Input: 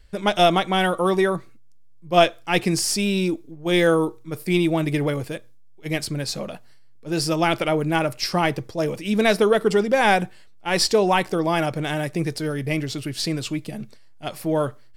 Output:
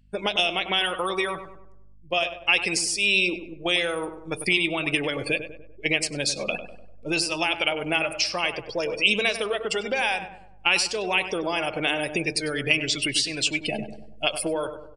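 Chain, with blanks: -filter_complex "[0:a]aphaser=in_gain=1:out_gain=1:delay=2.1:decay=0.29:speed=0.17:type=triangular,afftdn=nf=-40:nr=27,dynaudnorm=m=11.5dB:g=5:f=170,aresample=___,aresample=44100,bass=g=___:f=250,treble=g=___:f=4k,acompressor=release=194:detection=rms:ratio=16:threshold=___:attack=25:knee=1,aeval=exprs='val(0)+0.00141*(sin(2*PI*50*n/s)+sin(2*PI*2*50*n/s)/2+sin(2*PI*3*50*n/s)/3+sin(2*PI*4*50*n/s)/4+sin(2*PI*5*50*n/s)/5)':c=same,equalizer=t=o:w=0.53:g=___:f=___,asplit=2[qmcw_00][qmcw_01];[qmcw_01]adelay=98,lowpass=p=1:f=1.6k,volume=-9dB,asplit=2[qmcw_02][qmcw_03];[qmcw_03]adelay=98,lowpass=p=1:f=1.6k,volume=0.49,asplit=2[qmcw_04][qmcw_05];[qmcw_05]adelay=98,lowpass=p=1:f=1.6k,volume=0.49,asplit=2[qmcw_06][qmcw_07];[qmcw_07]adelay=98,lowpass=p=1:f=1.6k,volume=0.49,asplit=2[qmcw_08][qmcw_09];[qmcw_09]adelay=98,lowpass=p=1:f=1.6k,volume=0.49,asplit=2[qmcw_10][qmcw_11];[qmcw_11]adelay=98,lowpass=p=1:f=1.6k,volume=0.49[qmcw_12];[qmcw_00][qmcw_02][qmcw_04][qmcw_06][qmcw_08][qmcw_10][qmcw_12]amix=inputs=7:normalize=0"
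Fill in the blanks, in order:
22050, -15, 10, -25dB, 14.5, 2.7k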